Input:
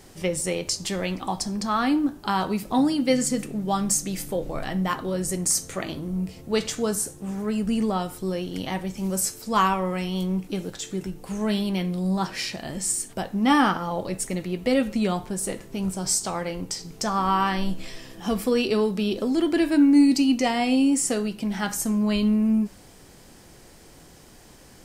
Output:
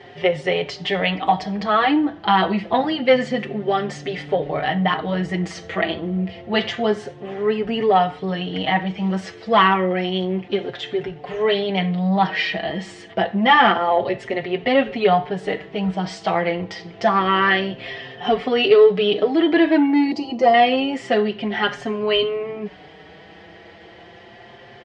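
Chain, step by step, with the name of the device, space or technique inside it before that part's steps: 20.11–20.54 band shelf 2300 Hz -14.5 dB; barber-pole flanger into a guitar amplifier (endless flanger 5.2 ms +0.28 Hz; soft clip -16 dBFS, distortion -20 dB; speaker cabinet 100–3700 Hz, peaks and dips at 250 Hz -7 dB, 420 Hz +6 dB, 710 Hz +10 dB, 1900 Hz +10 dB, 3100 Hz +7 dB); gain +8 dB

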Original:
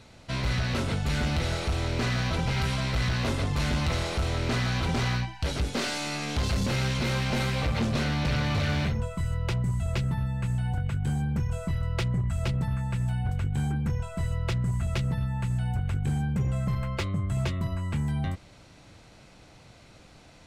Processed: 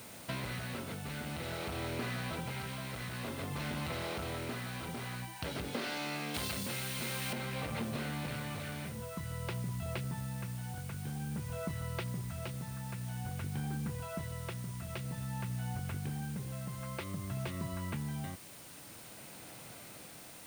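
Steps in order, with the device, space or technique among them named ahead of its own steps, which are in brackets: medium wave at night (BPF 140–3900 Hz; compressor, threshold -37 dBFS, peak gain reduction 12.5 dB; tremolo 0.51 Hz, depth 37%; whine 9000 Hz -60 dBFS; white noise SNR 14 dB); 6.34–7.33 high shelf 2500 Hz +10 dB; gain +2 dB

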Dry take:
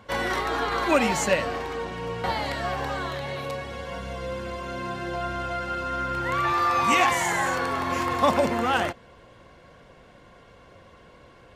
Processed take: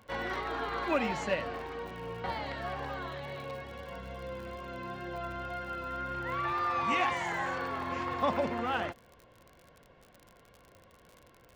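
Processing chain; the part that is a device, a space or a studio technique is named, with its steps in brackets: lo-fi chain (LPF 4000 Hz 12 dB/oct; wow and flutter 20 cents; crackle 68/s -34 dBFS); gain -8.5 dB

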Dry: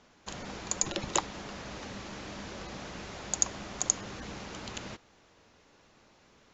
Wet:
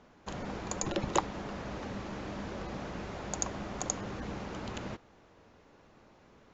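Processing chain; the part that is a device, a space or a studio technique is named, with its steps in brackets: through cloth (high shelf 2300 Hz -13 dB); gain +4 dB

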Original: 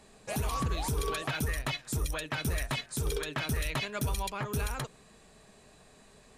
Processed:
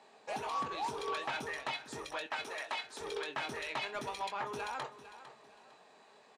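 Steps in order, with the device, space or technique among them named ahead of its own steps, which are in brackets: intercom (BPF 380–4600 Hz; bell 860 Hz +8.5 dB 0.38 oct; soft clip -26 dBFS, distortion -19 dB; doubler 22 ms -9 dB); 2.26–3.01 HPF 400 Hz 12 dB/oct; feedback echo 0.453 s, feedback 31%, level -14 dB; gain -2.5 dB

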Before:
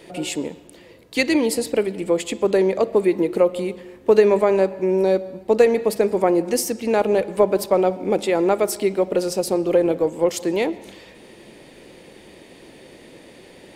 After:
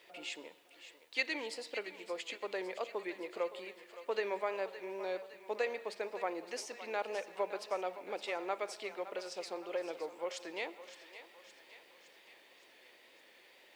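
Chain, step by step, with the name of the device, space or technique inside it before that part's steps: HPF 650 Hz 6 dB/oct; differentiator; cassette deck with a dirty head (tape spacing loss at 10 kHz 40 dB; wow and flutter; white noise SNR 34 dB); thinning echo 0.565 s, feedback 60%, high-pass 580 Hz, level -12 dB; gain +8.5 dB

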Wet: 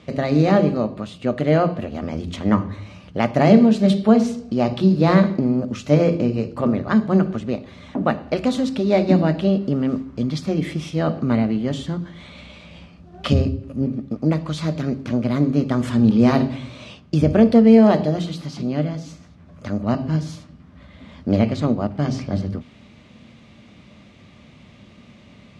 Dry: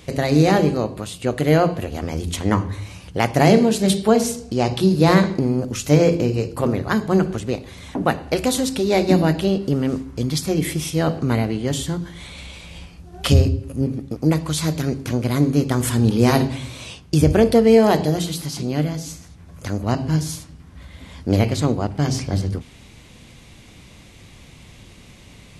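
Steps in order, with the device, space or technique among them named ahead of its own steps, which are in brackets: HPF 76 Hz; inside a cardboard box (LPF 4100 Hz 12 dB/oct; small resonant body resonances 220/600/1200 Hz, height 9 dB); gain -3.5 dB

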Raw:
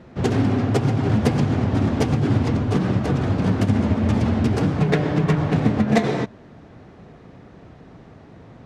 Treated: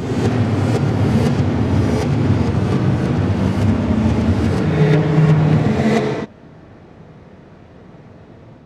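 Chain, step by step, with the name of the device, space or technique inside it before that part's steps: reverse reverb (reverse; reverb RT60 1.6 s, pre-delay 10 ms, DRR -4 dB; reverse); gain -2 dB

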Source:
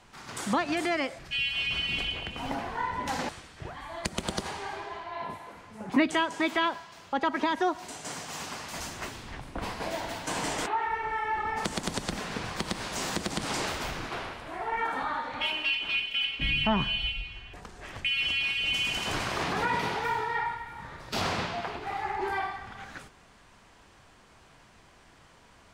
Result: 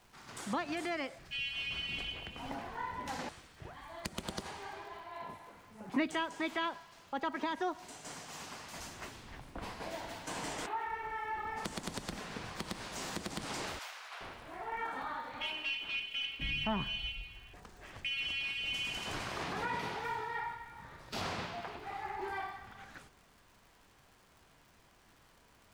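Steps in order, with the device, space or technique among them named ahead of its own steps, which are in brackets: record under a worn stylus (tracing distortion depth 0.027 ms; crackle 130/s -44 dBFS; pink noise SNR 32 dB); 13.79–14.21 Bessel high-pass 980 Hz, order 8; gain -8.5 dB

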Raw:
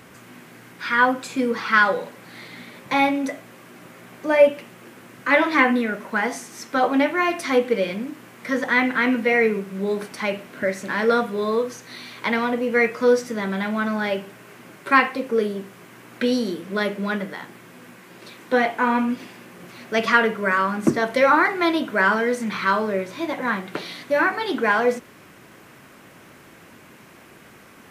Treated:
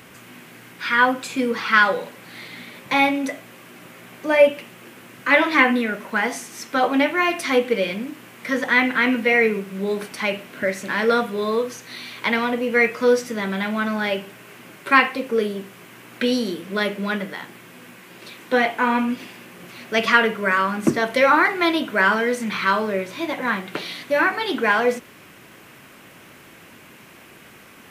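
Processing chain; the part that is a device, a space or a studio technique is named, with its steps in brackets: presence and air boost (bell 2800 Hz +5 dB 0.93 oct; high shelf 10000 Hz +6.5 dB)

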